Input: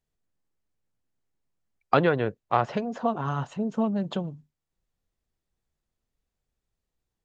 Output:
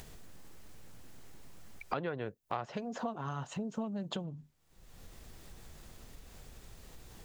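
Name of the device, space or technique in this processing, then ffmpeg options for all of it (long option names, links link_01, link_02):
upward and downward compression: -filter_complex "[0:a]acompressor=mode=upward:threshold=-26dB:ratio=2.5,acompressor=threshold=-38dB:ratio=3,asettb=1/sr,asplit=3[link_01][link_02][link_03];[link_01]atrim=end=2.214[link_04];[link_02]atrim=start=2.21:end=4.24,asetpts=PTS-STARTPTS,afade=type=in:duration=0.004:curve=qsin,afade=type=out:start_time=2.026:duration=0.004:curve=qsin,aemphasis=mode=production:type=50kf[link_05];[link_03]atrim=start=4.236[link_06];[link_04][link_05]acrossfade=duration=0.004:curve1=hsin:curve2=qsin[link_07];[link_07][link_06]acrossfade=duration=0.004:curve1=qsin:curve2=hsin"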